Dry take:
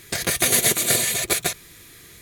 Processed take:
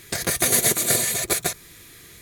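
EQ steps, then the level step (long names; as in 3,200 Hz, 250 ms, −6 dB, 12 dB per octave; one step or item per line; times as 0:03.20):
dynamic equaliser 2,900 Hz, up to −6 dB, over −38 dBFS, Q 1.6
0.0 dB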